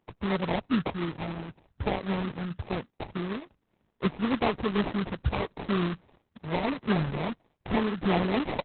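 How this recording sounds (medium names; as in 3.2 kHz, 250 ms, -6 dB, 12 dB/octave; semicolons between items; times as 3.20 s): aliases and images of a low sample rate 1.5 kHz, jitter 20%; Opus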